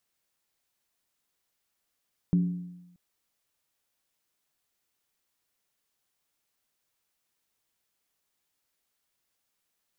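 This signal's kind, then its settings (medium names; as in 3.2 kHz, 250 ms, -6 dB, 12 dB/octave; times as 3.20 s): skin hit, lowest mode 177 Hz, decay 0.97 s, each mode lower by 12 dB, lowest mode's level -18 dB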